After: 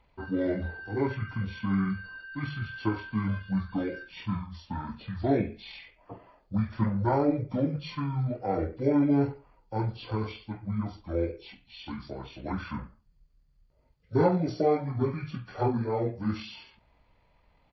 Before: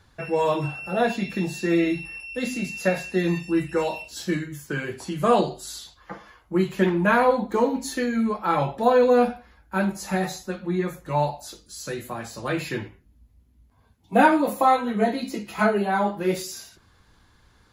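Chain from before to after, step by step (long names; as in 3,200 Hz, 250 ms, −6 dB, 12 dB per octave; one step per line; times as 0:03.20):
hearing-aid frequency compression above 4,000 Hz 1.5 to 1
pitch shifter −9.5 semitones
level −6 dB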